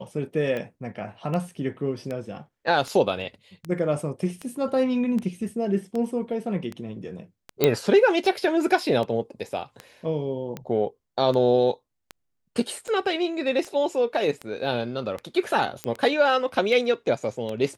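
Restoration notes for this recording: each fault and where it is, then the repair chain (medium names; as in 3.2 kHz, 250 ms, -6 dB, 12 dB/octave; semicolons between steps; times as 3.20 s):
tick 78 rpm -19 dBFS
7.64 s: pop -5 dBFS
15.84 s: pop -13 dBFS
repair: de-click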